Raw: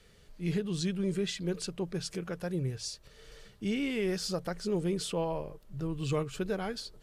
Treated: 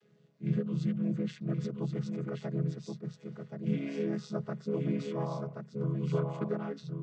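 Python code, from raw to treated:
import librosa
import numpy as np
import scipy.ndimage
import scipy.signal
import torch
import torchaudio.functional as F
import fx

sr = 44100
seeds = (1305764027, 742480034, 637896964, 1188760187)

y = fx.chord_vocoder(x, sr, chord='minor triad', root=49)
y = y + 10.0 ** (-5.0 / 20.0) * np.pad(y, (int(1076 * sr / 1000.0), 0))[:len(y)]
y = fx.dynamic_eq(y, sr, hz=1200.0, q=1.2, threshold_db=-57.0, ratio=4.0, max_db=7)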